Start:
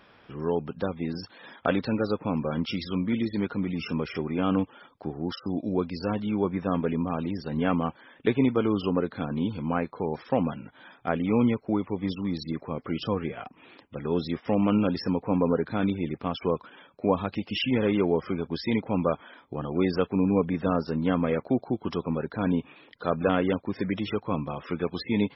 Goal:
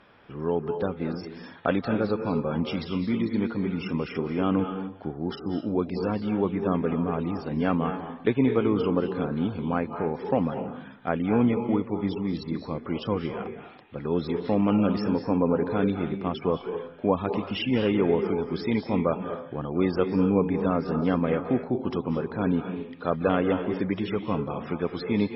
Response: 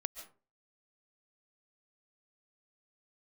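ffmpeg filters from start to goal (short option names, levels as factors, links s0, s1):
-filter_complex "[0:a]lowpass=f=3100:p=1[s0];[1:a]atrim=start_sample=2205,asetrate=28665,aresample=44100[s1];[s0][s1]afir=irnorm=-1:irlink=0"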